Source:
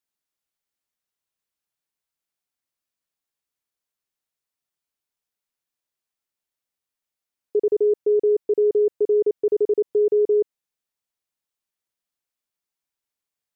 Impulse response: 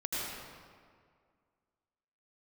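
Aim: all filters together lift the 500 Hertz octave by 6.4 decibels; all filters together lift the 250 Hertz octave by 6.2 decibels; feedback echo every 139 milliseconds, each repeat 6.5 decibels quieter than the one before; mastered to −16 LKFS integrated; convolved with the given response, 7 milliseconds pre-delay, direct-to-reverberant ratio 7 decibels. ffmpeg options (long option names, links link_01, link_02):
-filter_complex "[0:a]equalizer=frequency=250:width_type=o:gain=5.5,equalizer=frequency=500:width_type=o:gain=6,aecho=1:1:139|278|417|556|695|834:0.473|0.222|0.105|0.0491|0.0231|0.0109,asplit=2[link_01][link_02];[1:a]atrim=start_sample=2205,adelay=7[link_03];[link_02][link_03]afir=irnorm=-1:irlink=0,volume=-12.5dB[link_04];[link_01][link_04]amix=inputs=2:normalize=0,volume=-4.5dB"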